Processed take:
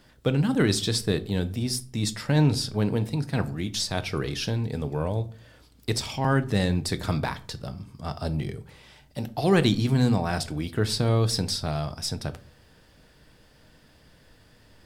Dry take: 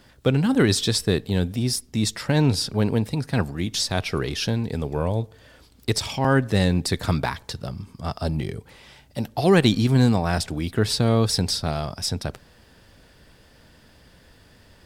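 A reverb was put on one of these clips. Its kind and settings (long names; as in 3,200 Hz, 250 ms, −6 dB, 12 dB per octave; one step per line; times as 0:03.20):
rectangular room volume 260 cubic metres, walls furnished, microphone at 0.5 metres
level −4 dB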